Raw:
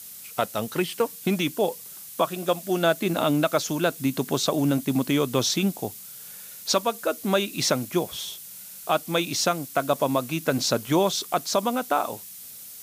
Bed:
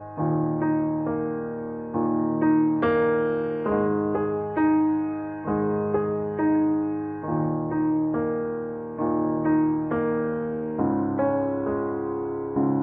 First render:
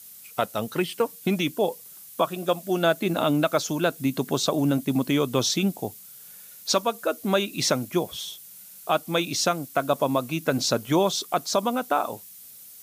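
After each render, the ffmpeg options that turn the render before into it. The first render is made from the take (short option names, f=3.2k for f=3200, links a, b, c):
-af "afftdn=nr=6:nf=-42"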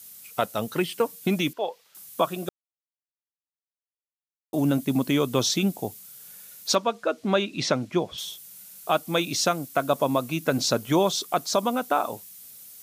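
-filter_complex "[0:a]asettb=1/sr,asplit=3[a][b][c];[a]atrim=end=1.534[d];[b]atrim=start=1.53:end=1.95,asetpts=PTS-STARTPTS,afade=t=in:d=0.004:c=qsin,afade=t=out:st=0.416:d=0.004:c=qsin,acrossover=split=520 4700:gain=0.112 1 0.0794[e][f][g];[e][f][g]amix=inputs=3:normalize=0[h];[c]atrim=start=1.946[i];[d][h]acrossfade=d=0.004:c1=hsin:c2=qsin[j];[j][i]acrossfade=d=0.004:c1=qsin:c2=hsin,asettb=1/sr,asplit=3[k][l][m];[k]atrim=end=6.754[n];[l]atrim=start=6.75:end=8.18,asetpts=PTS-STARTPTS,afade=t=in:d=0.004:c=qsin,afade=t=out:st=1.426:d=0.004:c=qsin,lowpass=4.6k[o];[m]atrim=start=8.176[p];[n][o]acrossfade=d=0.004:c1=hsin:c2=qsin[q];[q][p]acrossfade=d=0.004:c1=qsin:c2=hsin,asplit=3[r][s][t];[r]atrim=end=2.49,asetpts=PTS-STARTPTS,afade=t=out:st=2.486:d=0.004:c=hsin[u];[s]atrim=start=2.49:end=4.53,asetpts=PTS-STARTPTS,volume=0[v];[t]atrim=start=4.53,asetpts=PTS-STARTPTS,afade=t=in:d=0.004:c=hsin[w];[u][v][w]concat=n=3:v=0:a=1"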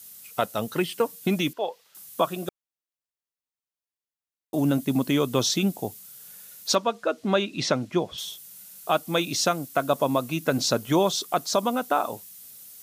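-af "bandreject=f=2.3k:w=27"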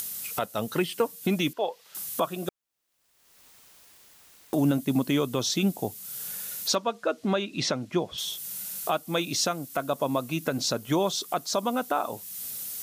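-af "acompressor=mode=upward:threshold=-25dB:ratio=2.5,alimiter=limit=-14dB:level=0:latency=1:release=329"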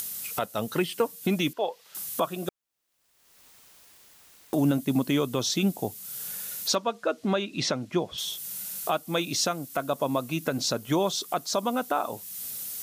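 -af anull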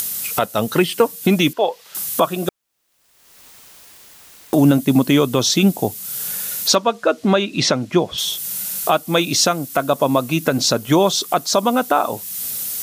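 -af "volume=10.5dB"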